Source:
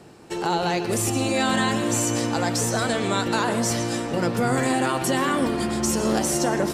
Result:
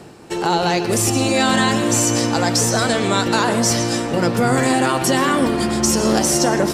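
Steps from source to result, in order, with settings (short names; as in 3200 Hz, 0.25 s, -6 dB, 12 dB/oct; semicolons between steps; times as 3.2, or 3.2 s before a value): dynamic EQ 5300 Hz, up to +5 dB, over -41 dBFS, Q 2.5; reverse; upward compressor, threshold -38 dBFS; reverse; gain +5.5 dB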